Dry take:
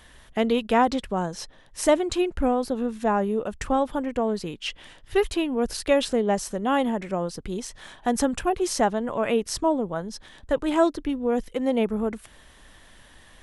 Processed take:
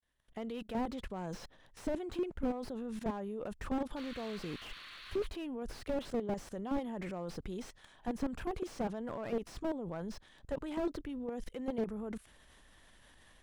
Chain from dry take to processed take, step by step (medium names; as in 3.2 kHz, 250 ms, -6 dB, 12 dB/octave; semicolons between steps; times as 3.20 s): fade-in on the opening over 1.05 s; level held to a coarse grid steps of 21 dB; overload inside the chain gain 29.5 dB; painted sound noise, 3.96–5.27 s, 1–4.6 kHz -52 dBFS; slew-rate limiter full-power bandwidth 10 Hz; trim +2 dB